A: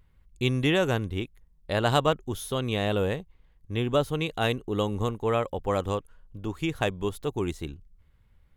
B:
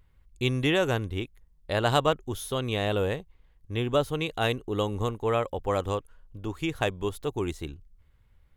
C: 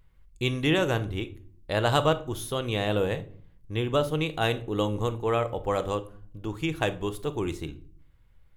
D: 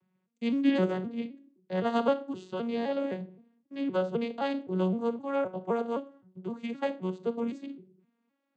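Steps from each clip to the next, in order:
peaking EQ 190 Hz -4 dB 0.78 oct
simulated room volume 570 m³, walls furnished, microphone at 0.66 m
vocoder on a broken chord major triad, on F#3, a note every 259 ms; trim -2 dB

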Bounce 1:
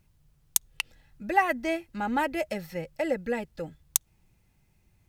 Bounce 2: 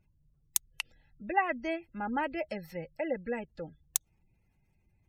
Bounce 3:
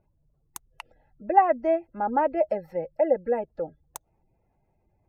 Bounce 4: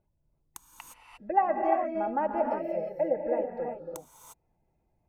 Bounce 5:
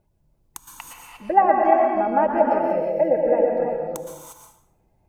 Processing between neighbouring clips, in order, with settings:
spectral gate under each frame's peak -30 dB strong; trim -5 dB
FFT filter 190 Hz 0 dB, 660 Hz +14 dB, 3.3 kHz -12 dB
gated-style reverb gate 380 ms rising, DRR 1 dB; trim -6 dB
plate-style reverb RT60 0.64 s, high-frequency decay 0.85×, pre-delay 105 ms, DRR 3.5 dB; trim +8 dB

